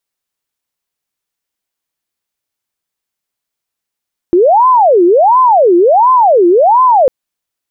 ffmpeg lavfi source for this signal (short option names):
-f lavfi -i "aevalsrc='0.631*sin(2*PI*(686.5*t-343.5/(2*PI*1.4)*sin(2*PI*1.4*t)))':d=2.75:s=44100"